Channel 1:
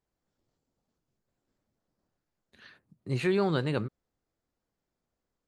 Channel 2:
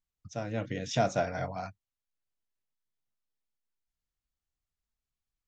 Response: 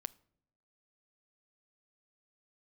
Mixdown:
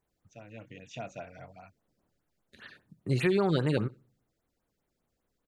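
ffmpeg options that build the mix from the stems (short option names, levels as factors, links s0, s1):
-filter_complex "[0:a]acompressor=threshold=0.0447:ratio=6,volume=1.41,asplit=3[s0][s1][s2];[s1]volume=0.316[s3];[s2]volume=0.112[s4];[1:a]equalizer=f=2600:w=5.4:g=14.5,bandreject=f=5300:w=6.8,volume=0.211[s5];[2:a]atrim=start_sample=2205[s6];[s3][s6]afir=irnorm=-1:irlink=0[s7];[s4]aecho=0:1:63|126|189|252:1|0.25|0.0625|0.0156[s8];[s0][s5][s7][s8]amix=inputs=4:normalize=0,afftfilt=real='re*(1-between(b*sr/1024,830*pow(6600/830,0.5+0.5*sin(2*PI*5*pts/sr))/1.41,830*pow(6600/830,0.5+0.5*sin(2*PI*5*pts/sr))*1.41))':imag='im*(1-between(b*sr/1024,830*pow(6600/830,0.5+0.5*sin(2*PI*5*pts/sr))/1.41,830*pow(6600/830,0.5+0.5*sin(2*PI*5*pts/sr))*1.41))':win_size=1024:overlap=0.75"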